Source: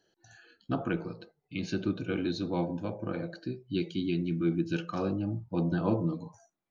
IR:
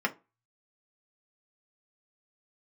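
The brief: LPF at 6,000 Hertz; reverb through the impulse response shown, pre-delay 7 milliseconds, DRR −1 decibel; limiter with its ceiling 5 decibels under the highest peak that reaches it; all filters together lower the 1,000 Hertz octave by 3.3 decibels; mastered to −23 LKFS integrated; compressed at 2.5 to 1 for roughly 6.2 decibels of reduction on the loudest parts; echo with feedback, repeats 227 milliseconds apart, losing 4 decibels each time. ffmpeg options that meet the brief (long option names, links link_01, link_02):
-filter_complex "[0:a]lowpass=6000,equalizer=frequency=1000:width_type=o:gain=-4.5,acompressor=threshold=-33dB:ratio=2.5,alimiter=level_in=3.5dB:limit=-24dB:level=0:latency=1,volume=-3.5dB,aecho=1:1:227|454|681|908|1135|1362|1589|1816|2043:0.631|0.398|0.25|0.158|0.0994|0.0626|0.0394|0.0249|0.0157,asplit=2[link_01][link_02];[1:a]atrim=start_sample=2205,adelay=7[link_03];[link_02][link_03]afir=irnorm=-1:irlink=0,volume=-8.5dB[link_04];[link_01][link_04]amix=inputs=2:normalize=0,volume=9.5dB"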